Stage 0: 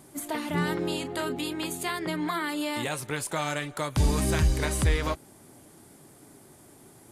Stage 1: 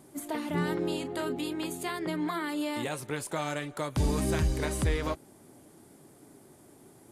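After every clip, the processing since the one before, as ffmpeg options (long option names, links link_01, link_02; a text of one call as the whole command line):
ffmpeg -i in.wav -af "equalizer=frequency=350:width_type=o:width=2.5:gain=5,volume=-5.5dB" out.wav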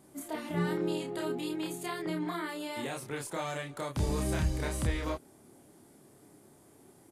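ffmpeg -i in.wav -filter_complex "[0:a]asplit=2[link_01][link_02];[link_02]adelay=29,volume=-2dB[link_03];[link_01][link_03]amix=inputs=2:normalize=0,volume=-5dB" out.wav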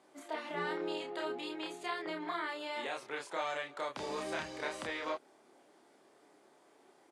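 ffmpeg -i in.wav -af "highpass=520,lowpass=4500,volume=1dB" out.wav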